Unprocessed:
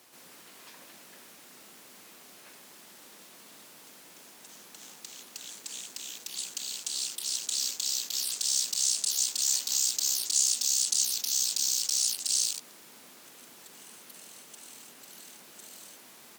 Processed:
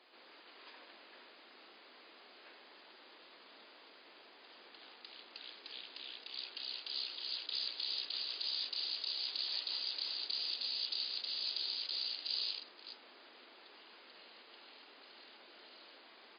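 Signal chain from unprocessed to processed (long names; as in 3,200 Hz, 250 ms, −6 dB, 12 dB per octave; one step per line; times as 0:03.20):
delay that plays each chunk backwards 244 ms, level −10 dB
high-pass filter 300 Hz 24 dB per octave
level −3 dB
MP3 24 kbit/s 11,025 Hz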